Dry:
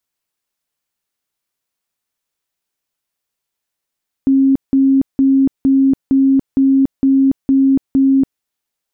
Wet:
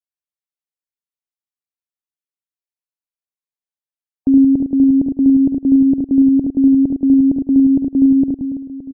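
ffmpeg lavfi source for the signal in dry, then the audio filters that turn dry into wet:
-f lavfi -i "aevalsrc='0.398*sin(2*PI*270*mod(t,0.46))*lt(mod(t,0.46),77/270)':duration=4.14:sample_rate=44100"
-filter_complex "[0:a]asplit=2[link_01][link_02];[link_02]aecho=0:1:106:0.398[link_03];[link_01][link_03]amix=inputs=2:normalize=0,afftdn=noise_reduction=23:noise_floor=-33,asplit=2[link_04][link_05];[link_05]aecho=0:1:70|175|332.5|568.8|923.1:0.631|0.398|0.251|0.158|0.1[link_06];[link_04][link_06]amix=inputs=2:normalize=0"

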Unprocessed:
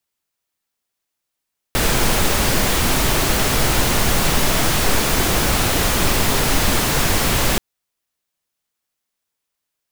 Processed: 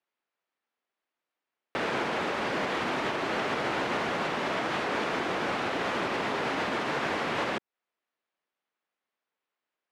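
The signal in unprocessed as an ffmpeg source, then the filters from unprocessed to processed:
-f lavfi -i "anoisesrc=color=pink:amplitude=0.767:duration=5.83:sample_rate=44100:seed=1"
-af "highpass=280,lowpass=2300,alimiter=limit=-21dB:level=0:latency=1:release=225"

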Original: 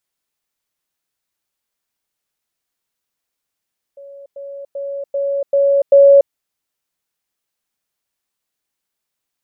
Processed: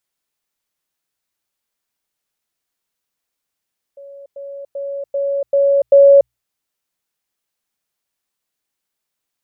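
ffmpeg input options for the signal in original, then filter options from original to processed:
-f lavfi -i "aevalsrc='pow(10,(-34+6*floor(t/0.39))/20)*sin(2*PI*559*t)*clip(min(mod(t,0.39),0.29-mod(t,0.39))/0.005,0,1)':duration=2.34:sample_rate=44100"
-af "bandreject=frequency=60:width_type=h:width=6,bandreject=frequency=120:width_type=h:width=6"

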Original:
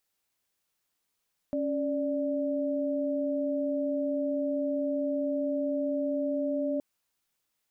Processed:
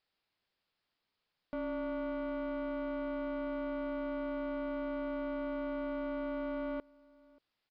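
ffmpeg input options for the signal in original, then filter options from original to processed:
-f lavfi -i "aevalsrc='0.0335*(sin(2*PI*277.18*t)+sin(2*PI*587.33*t))':duration=5.27:sample_rate=44100"
-filter_complex "[0:a]aresample=11025,asoftclip=type=tanh:threshold=-34.5dB,aresample=44100,asplit=2[link_01][link_02];[link_02]adelay=583.1,volume=-25dB,highshelf=frequency=4000:gain=-13.1[link_03];[link_01][link_03]amix=inputs=2:normalize=0"

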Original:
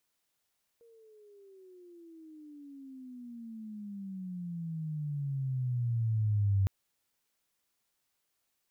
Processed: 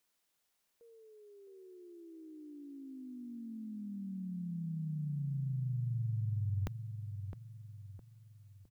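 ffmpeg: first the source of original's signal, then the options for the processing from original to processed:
-f lavfi -i "aevalsrc='pow(10,(-23.5+33*(t/5.86-1))/20)*sin(2*PI*469*5.86/(-27.5*log(2)/12)*(exp(-27.5*log(2)/12*t/5.86)-1))':duration=5.86:sample_rate=44100"
-filter_complex "[0:a]equalizer=frequency=97:width=1.9:gain=-7.5,asplit=2[link_01][link_02];[link_02]adelay=661,lowpass=frequency=860:poles=1,volume=-8dB,asplit=2[link_03][link_04];[link_04]adelay=661,lowpass=frequency=860:poles=1,volume=0.42,asplit=2[link_05][link_06];[link_06]adelay=661,lowpass=frequency=860:poles=1,volume=0.42,asplit=2[link_07][link_08];[link_08]adelay=661,lowpass=frequency=860:poles=1,volume=0.42,asplit=2[link_09][link_10];[link_10]adelay=661,lowpass=frequency=860:poles=1,volume=0.42[link_11];[link_01][link_03][link_05][link_07][link_09][link_11]amix=inputs=6:normalize=0"

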